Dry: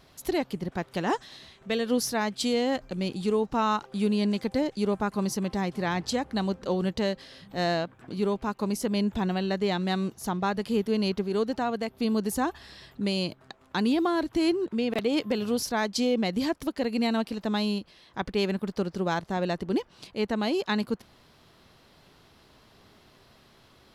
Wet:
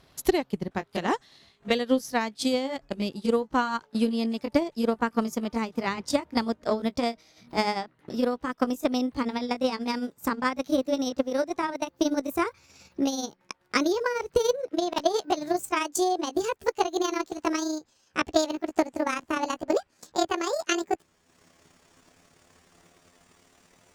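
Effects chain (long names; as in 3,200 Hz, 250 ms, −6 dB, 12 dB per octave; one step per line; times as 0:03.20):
pitch glide at a constant tempo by +10 semitones starting unshifted
transient designer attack +9 dB, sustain −7 dB
harmonic generator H 3 −24 dB, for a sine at −6 dBFS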